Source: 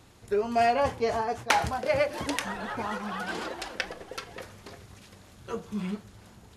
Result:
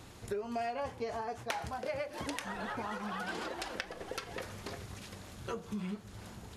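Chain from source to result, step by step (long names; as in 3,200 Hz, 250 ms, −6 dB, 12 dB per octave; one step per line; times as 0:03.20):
downward compressor 5 to 1, threshold −40 dBFS, peak gain reduction 19.5 dB
level +3.5 dB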